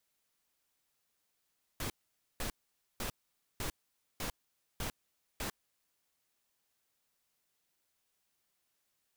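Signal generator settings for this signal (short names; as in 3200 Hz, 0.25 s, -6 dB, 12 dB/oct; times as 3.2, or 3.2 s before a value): noise bursts pink, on 0.10 s, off 0.50 s, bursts 7, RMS -37.5 dBFS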